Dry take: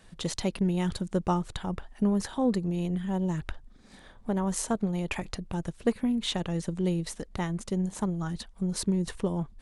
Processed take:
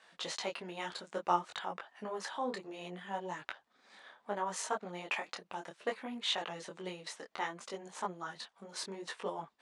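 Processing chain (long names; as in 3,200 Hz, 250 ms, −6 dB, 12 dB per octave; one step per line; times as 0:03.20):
band-pass filter 760–7,900 Hz
high-shelf EQ 4,900 Hz −10 dB
micro pitch shift up and down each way 22 cents
level +5.5 dB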